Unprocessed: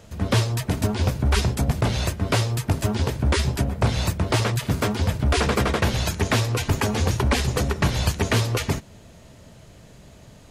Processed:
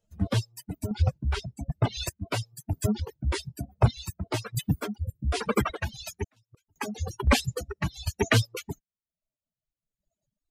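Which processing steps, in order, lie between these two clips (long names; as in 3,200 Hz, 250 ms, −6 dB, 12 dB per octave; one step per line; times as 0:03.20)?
spectral dynamics exaggerated over time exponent 2
reverb reduction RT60 1.8 s
0:01.02–0:01.97: high-frequency loss of the air 73 metres
0:04.97–0:05.32: gain on a spectral selection 600–7,000 Hz −23 dB
reverb reduction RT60 0.67 s
0:06.24–0:06.76: gate with flip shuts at −32 dBFS, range −41 dB
square-wave tremolo 1.1 Hz, depth 60%, duty 30%
level +4.5 dB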